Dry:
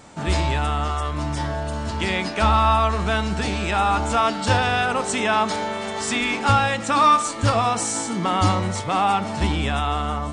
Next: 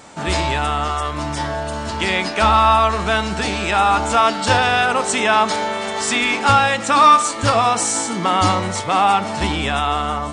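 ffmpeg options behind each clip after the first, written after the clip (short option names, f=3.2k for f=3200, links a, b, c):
-af "lowshelf=f=230:g=-8.5,volume=5.5dB"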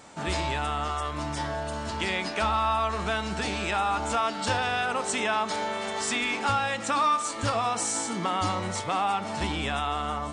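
-af "acompressor=threshold=-18dB:ratio=2,volume=-7.5dB"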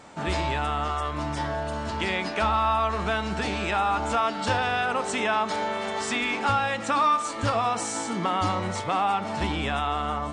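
-af "highshelf=f=5k:g=-9,volume=2.5dB"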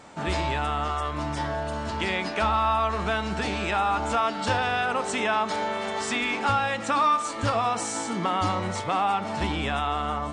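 -af anull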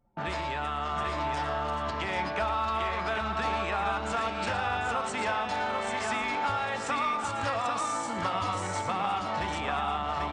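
-filter_complex "[0:a]anlmdn=10,acrossover=split=150|540|1900[a][b][c][d];[a]acompressor=threshold=-42dB:ratio=4[e];[b]acompressor=threshold=-45dB:ratio=4[f];[c]acompressor=threshold=-31dB:ratio=4[g];[d]acompressor=threshold=-41dB:ratio=4[h];[e][f][g][h]amix=inputs=4:normalize=0,asplit=2[i][j];[j]aecho=0:1:114|747|792:0.282|0.282|0.631[k];[i][k]amix=inputs=2:normalize=0"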